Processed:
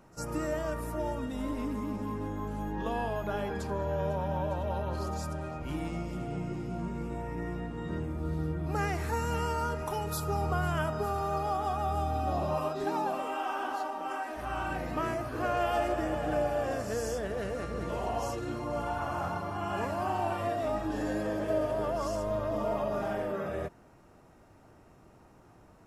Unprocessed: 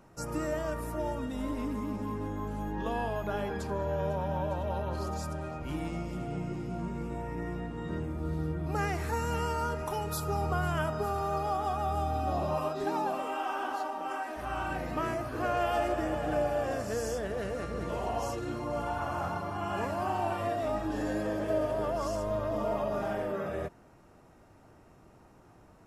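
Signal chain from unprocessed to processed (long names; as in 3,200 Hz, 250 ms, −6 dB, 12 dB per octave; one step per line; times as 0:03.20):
echo ahead of the sound 52 ms −22.5 dB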